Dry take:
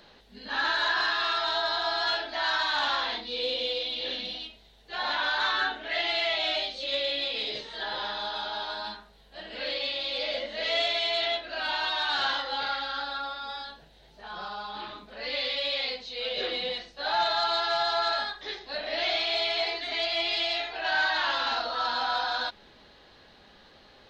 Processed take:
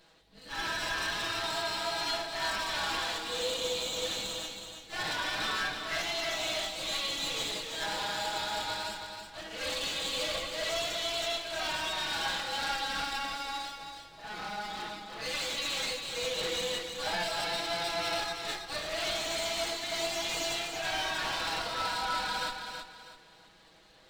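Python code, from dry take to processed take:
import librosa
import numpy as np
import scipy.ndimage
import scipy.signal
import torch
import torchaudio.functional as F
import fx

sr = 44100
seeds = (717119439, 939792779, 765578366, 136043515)

y = fx.lower_of_two(x, sr, delay_ms=6.2)
y = fx.rider(y, sr, range_db=3, speed_s=0.5)
y = fx.echo_feedback(y, sr, ms=325, feedback_pct=31, wet_db=-6.5)
y = y * librosa.db_to_amplitude(-3.0)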